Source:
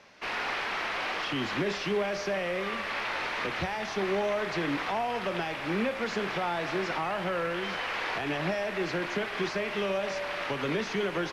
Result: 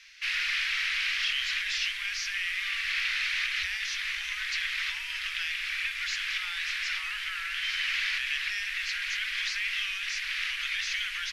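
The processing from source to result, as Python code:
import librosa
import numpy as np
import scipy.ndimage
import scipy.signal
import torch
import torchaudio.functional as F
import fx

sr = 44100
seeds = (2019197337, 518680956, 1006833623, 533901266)

y = scipy.signal.sosfilt(scipy.signal.cheby2(4, 60, [130.0, 680.0], 'bandstop', fs=sr, output='sos'), x)
y = y * 10.0 ** (7.5 / 20.0)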